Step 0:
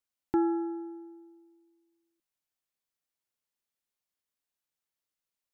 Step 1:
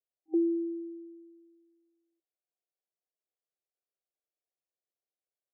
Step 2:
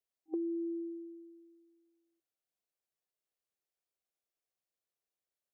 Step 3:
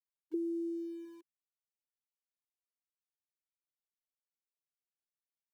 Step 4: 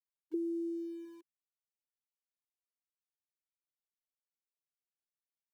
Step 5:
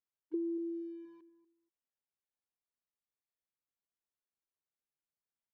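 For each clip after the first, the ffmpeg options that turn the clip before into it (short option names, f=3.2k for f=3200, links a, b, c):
-af "afftfilt=real='re*between(b*sr/4096,320,790)':imag='im*between(b*sr/4096,320,790)':win_size=4096:overlap=0.75"
-af "acompressor=threshold=-34dB:ratio=6"
-filter_complex "[0:a]afftfilt=real='re*gte(hypot(re,im),0.0355)':imag='im*gte(hypot(re,im),0.0355)':win_size=1024:overlap=0.75,acrossover=split=320|410[a][b][c];[a]aeval=exprs='val(0)*gte(abs(val(0)),0.00106)':c=same[d];[d][b][c]amix=inputs=3:normalize=0"
-af anull
-filter_complex "[0:a]asplit=2[a][b];[b]adelay=239,lowpass=f=940:p=1,volume=-13dB,asplit=2[c][d];[d]adelay=239,lowpass=f=940:p=1,volume=0.17[e];[a][c][e]amix=inputs=3:normalize=0,adynamicsmooth=sensitivity=1.5:basefreq=2.3k"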